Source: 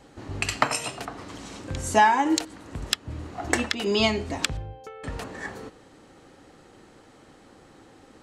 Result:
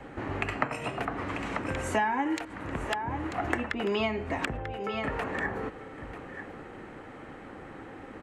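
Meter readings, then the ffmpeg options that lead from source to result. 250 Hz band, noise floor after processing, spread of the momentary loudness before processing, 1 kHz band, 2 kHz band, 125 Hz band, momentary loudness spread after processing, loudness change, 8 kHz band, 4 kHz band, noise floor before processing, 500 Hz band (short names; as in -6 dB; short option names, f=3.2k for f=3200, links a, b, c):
-3.0 dB, -46 dBFS, 19 LU, -6.0 dB, -3.0 dB, -2.5 dB, 16 LU, -6.0 dB, -15.0 dB, -11.5 dB, -53 dBFS, -3.0 dB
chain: -filter_complex "[0:a]highshelf=f=3.2k:t=q:w=1.5:g=-13,aecho=1:1:941:0.141,acrossover=split=270|560|1400[a][b][c][d];[a]acompressor=threshold=-45dB:ratio=4[e];[b]acompressor=threshold=-45dB:ratio=4[f];[c]acompressor=threshold=-42dB:ratio=4[g];[d]acompressor=threshold=-44dB:ratio=4[h];[e][f][g][h]amix=inputs=4:normalize=0,volume=7dB"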